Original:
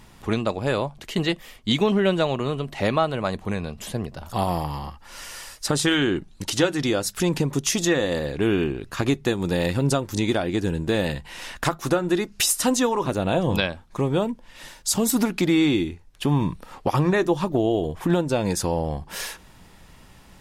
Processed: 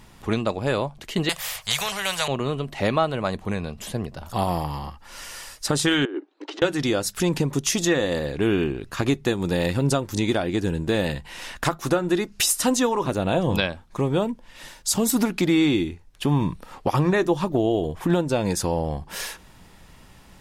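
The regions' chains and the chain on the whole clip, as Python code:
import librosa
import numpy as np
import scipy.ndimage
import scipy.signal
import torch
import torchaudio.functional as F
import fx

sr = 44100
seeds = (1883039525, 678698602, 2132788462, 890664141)

y = fx.chain(x, sr, fx.cheby1_bandstop(low_hz=120.0, high_hz=700.0, order=2),
    fx.tilt_eq(slope=2.0),
    fx.spectral_comp(ratio=2.0), at=(1.29, 2.28))
y = fx.chain(y, sr, fx.cheby1_highpass(hz=290.0, order=6),
    fx.spacing_loss(db_at_10k=38),
    fx.over_compress(threshold_db=-29.0, ratio=-0.5), at=(6.05, 6.62))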